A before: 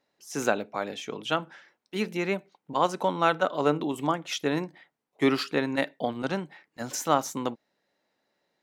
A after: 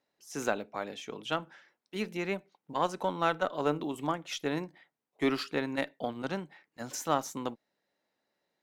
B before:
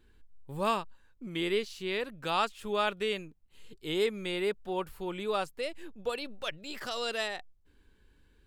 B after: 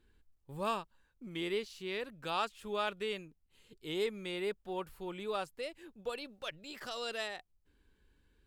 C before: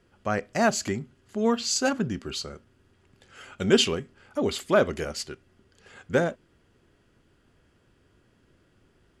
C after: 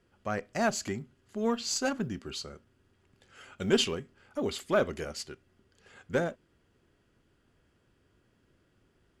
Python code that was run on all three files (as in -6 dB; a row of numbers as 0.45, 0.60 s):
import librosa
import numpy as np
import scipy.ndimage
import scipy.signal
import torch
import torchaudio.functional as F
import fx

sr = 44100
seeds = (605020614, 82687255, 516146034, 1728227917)

y = fx.quant_float(x, sr, bits=6)
y = fx.cheby_harmonics(y, sr, harmonics=(6,), levels_db=(-31,), full_scale_db=-6.0)
y = y * 10.0 ** (-5.5 / 20.0)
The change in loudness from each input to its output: -5.5, -5.5, -5.5 LU